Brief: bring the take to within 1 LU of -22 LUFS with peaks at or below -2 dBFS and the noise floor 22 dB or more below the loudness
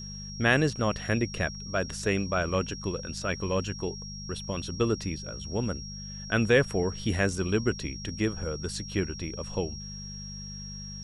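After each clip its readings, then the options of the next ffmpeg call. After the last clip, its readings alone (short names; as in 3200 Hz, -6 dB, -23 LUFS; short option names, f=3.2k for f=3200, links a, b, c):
hum 50 Hz; harmonics up to 200 Hz; hum level -40 dBFS; steady tone 5600 Hz; tone level -41 dBFS; loudness -30.0 LUFS; peak -8.5 dBFS; loudness target -22.0 LUFS
-> -af "bandreject=f=50:t=h:w=4,bandreject=f=100:t=h:w=4,bandreject=f=150:t=h:w=4,bandreject=f=200:t=h:w=4"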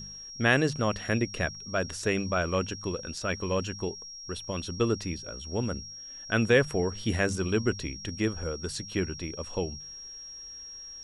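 hum none; steady tone 5600 Hz; tone level -41 dBFS
-> -af "bandreject=f=5.6k:w=30"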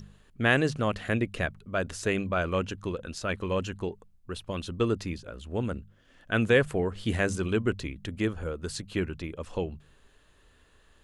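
steady tone none; loudness -30.0 LUFS; peak -8.5 dBFS; loudness target -22.0 LUFS
-> -af "volume=8dB,alimiter=limit=-2dB:level=0:latency=1"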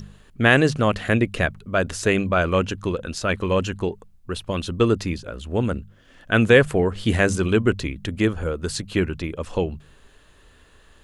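loudness -22.0 LUFS; peak -2.0 dBFS; noise floor -53 dBFS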